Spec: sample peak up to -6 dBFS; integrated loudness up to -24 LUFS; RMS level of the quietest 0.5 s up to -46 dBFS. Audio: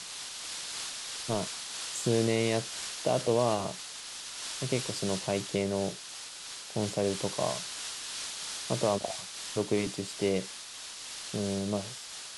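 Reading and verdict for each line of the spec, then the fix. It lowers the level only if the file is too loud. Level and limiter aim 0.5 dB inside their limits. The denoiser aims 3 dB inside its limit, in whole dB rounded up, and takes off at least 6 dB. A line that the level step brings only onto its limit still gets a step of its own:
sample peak -13.5 dBFS: OK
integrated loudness -32.5 LUFS: OK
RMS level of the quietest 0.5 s -44 dBFS: fail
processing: denoiser 6 dB, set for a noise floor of -44 dBFS

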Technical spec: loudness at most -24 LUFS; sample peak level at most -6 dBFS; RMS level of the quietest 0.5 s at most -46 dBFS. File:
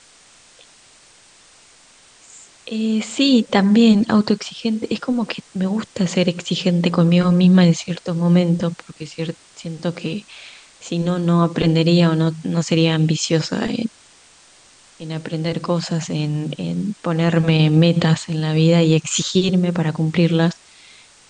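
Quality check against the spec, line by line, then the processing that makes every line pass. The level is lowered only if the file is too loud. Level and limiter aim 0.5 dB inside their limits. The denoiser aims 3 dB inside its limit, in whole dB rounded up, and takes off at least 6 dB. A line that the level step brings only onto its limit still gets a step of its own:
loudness -18.0 LUFS: fail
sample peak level -4.5 dBFS: fail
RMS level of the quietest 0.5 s -50 dBFS: OK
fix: gain -6.5 dB

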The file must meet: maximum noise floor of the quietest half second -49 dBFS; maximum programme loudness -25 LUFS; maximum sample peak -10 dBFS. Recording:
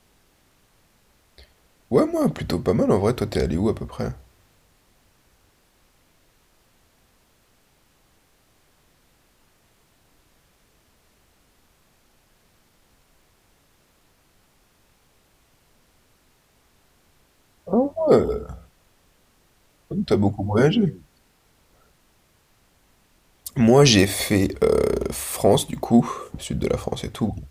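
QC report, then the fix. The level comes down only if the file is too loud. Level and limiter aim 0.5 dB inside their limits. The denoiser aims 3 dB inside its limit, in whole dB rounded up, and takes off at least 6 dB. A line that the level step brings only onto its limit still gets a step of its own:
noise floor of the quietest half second -61 dBFS: OK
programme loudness -21.0 LUFS: fail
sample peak -4.5 dBFS: fail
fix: gain -4.5 dB; limiter -10.5 dBFS

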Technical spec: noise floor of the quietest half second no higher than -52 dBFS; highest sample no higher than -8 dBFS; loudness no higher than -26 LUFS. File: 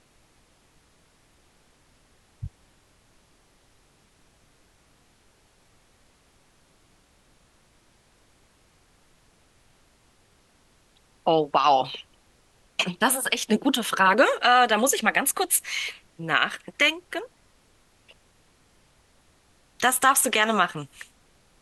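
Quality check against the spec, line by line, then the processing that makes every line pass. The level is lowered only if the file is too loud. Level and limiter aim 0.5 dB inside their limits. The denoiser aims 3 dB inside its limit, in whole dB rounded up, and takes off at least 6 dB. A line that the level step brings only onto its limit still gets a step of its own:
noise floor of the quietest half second -61 dBFS: OK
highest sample -5.5 dBFS: fail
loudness -22.5 LUFS: fail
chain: gain -4 dB

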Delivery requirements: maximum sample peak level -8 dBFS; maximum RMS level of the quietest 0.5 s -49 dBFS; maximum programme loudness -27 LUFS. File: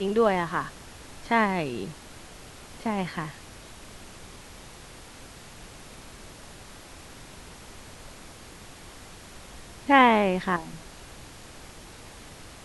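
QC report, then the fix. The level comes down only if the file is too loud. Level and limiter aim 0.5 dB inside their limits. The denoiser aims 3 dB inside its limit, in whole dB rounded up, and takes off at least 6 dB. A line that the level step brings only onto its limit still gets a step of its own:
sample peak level -4.5 dBFS: fail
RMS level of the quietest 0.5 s -46 dBFS: fail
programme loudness -25.0 LUFS: fail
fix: denoiser 6 dB, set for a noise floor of -46 dBFS; gain -2.5 dB; limiter -8.5 dBFS

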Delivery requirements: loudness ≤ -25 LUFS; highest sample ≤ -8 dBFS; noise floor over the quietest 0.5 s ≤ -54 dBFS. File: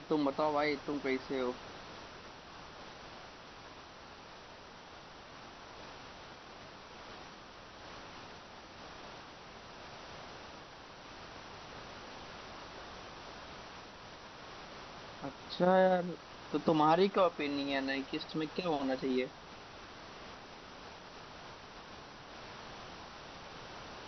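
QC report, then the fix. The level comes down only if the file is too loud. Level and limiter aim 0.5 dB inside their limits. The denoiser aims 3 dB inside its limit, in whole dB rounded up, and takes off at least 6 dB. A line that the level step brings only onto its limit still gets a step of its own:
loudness -36.0 LUFS: OK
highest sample -16.0 dBFS: OK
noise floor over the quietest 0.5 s -52 dBFS: fail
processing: denoiser 6 dB, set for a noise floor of -52 dBFS

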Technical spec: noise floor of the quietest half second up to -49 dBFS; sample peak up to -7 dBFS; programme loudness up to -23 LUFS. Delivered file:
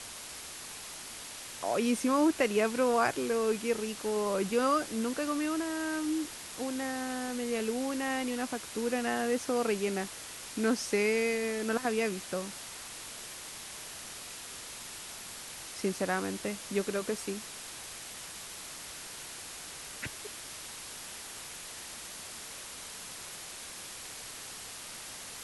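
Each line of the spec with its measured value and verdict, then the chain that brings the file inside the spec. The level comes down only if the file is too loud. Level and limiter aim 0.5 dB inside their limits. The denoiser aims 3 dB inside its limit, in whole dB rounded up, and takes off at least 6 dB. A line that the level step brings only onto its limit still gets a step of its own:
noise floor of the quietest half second -44 dBFS: fail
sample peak -14.5 dBFS: OK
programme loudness -34.0 LUFS: OK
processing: denoiser 8 dB, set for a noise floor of -44 dBFS

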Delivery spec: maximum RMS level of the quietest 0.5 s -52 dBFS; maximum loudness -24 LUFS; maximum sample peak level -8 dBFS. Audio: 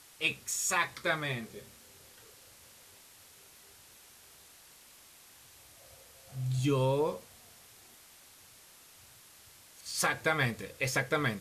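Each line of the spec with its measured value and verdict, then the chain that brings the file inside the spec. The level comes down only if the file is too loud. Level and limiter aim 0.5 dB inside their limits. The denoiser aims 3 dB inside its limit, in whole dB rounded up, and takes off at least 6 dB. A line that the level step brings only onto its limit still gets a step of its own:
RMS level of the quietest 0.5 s -57 dBFS: OK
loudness -31.5 LUFS: OK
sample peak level -14.5 dBFS: OK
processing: none

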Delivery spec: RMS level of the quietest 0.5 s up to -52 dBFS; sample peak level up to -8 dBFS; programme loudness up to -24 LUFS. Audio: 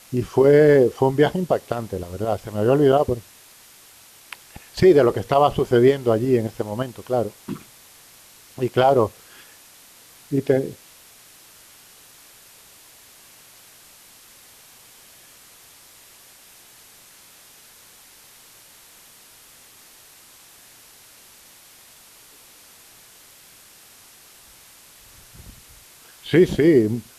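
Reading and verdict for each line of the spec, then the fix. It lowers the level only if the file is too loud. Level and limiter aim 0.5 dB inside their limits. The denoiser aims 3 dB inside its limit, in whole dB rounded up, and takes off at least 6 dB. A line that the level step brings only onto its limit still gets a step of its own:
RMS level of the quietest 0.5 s -49 dBFS: fail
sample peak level -5.5 dBFS: fail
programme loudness -19.0 LUFS: fail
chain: gain -5.5 dB

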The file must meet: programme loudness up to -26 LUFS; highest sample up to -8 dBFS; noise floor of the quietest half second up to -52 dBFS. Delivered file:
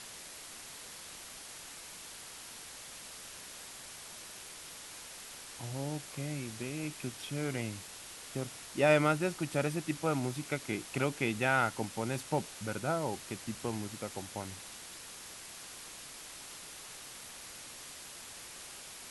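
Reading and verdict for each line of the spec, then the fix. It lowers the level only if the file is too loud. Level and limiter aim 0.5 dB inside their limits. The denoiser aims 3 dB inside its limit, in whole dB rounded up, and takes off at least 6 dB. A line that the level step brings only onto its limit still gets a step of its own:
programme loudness -37.5 LUFS: OK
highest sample -13.5 dBFS: OK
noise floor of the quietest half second -48 dBFS: fail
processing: denoiser 7 dB, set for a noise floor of -48 dBFS

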